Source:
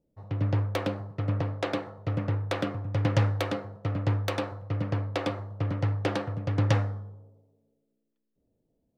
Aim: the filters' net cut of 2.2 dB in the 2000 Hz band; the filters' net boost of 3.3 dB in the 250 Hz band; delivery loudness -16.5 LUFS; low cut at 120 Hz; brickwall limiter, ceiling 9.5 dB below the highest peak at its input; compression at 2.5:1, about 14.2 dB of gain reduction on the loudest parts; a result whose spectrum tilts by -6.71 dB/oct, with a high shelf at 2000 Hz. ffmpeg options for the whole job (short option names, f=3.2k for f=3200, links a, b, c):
-af "highpass=120,equalizer=f=250:t=o:g=4.5,highshelf=f=2k:g=6,equalizer=f=2k:t=o:g=-6.5,acompressor=threshold=-44dB:ratio=2.5,volume=29dB,alimiter=limit=-4.5dB:level=0:latency=1"